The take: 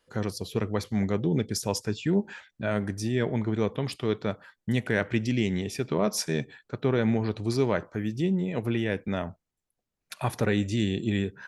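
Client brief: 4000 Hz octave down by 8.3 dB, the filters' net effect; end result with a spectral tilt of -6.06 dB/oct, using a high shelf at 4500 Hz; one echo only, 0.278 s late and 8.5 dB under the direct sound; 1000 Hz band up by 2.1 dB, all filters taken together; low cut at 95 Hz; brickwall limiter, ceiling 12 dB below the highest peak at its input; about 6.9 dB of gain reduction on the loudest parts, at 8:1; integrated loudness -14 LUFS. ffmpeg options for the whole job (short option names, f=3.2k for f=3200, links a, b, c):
-af "highpass=95,equalizer=f=1k:t=o:g=3.5,equalizer=f=4k:t=o:g=-6.5,highshelf=f=4.5k:g=-8.5,acompressor=threshold=-27dB:ratio=8,alimiter=level_in=4dB:limit=-24dB:level=0:latency=1,volume=-4dB,aecho=1:1:278:0.376,volume=24.5dB"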